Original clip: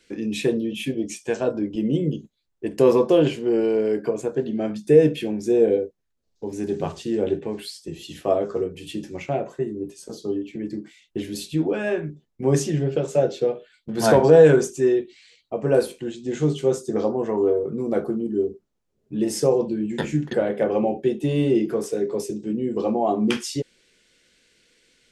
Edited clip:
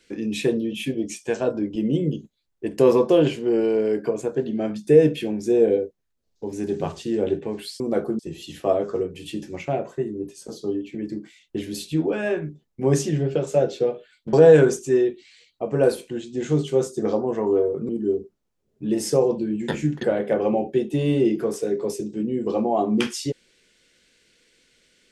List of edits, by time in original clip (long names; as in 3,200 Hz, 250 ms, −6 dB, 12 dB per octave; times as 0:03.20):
0:13.94–0:14.24: remove
0:17.80–0:18.19: move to 0:07.80